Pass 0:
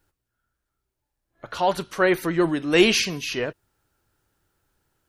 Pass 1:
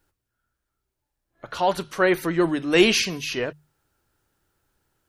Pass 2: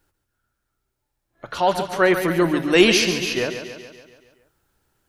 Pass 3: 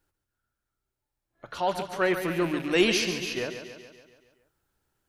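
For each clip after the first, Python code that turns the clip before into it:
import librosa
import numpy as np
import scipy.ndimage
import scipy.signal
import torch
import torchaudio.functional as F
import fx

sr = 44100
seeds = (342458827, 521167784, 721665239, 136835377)

y1 = fx.hum_notches(x, sr, base_hz=50, count=3)
y2 = fx.echo_feedback(y1, sr, ms=141, feedback_pct=58, wet_db=-9)
y2 = F.gain(torch.from_numpy(y2), 2.5).numpy()
y3 = fx.rattle_buzz(y2, sr, strikes_db=-28.0, level_db=-22.0)
y3 = F.gain(torch.from_numpy(y3), -8.0).numpy()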